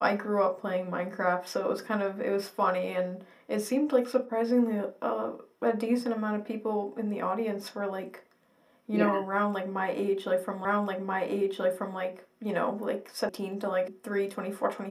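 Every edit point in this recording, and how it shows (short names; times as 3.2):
10.65 repeat of the last 1.33 s
13.29 sound cut off
13.88 sound cut off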